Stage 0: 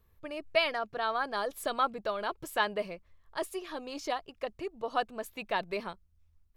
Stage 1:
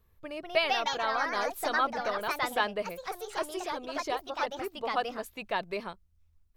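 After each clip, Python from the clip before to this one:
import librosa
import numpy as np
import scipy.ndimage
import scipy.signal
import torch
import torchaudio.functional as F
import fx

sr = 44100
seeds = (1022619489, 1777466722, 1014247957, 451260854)

y = fx.echo_pitch(x, sr, ms=235, semitones=3, count=2, db_per_echo=-3.0)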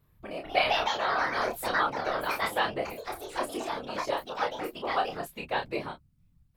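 y = fx.peak_eq(x, sr, hz=6100.0, db=-4.5, octaves=0.37)
y = fx.whisperise(y, sr, seeds[0])
y = fx.room_early_taps(y, sr, ms=(29, 42), db=(-4.5, -14.5))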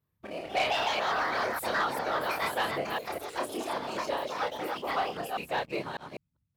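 y = fx.reverse_delay(x, sr, ms=199, wet_db=-5)
y = scipy.signal.sosfilt(scipy.signal.butter(2, 76.0, 'highpass', fs=sr, output='sos'), y)
y = fx.leveller(y, sr, passes=2)
y = F.gain(torch.from_numpy(y), -8.5).numpy()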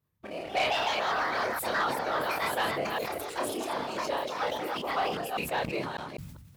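y = fx.sustainer(x, sr, db_per_s=44.0)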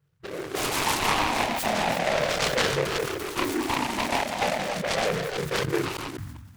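y = fx.spec_ripple(x, sr, per_octave=0.55, drift_hz=-0.38, depth_db=20)
y = fx.peak_eq(y, sr, hz=150.0, db=6.0, octaves=1.4)
y = fx.noise_mod_delay(y, sr, seeds[1], noise_hz=1300.0, depth_ms=0.14)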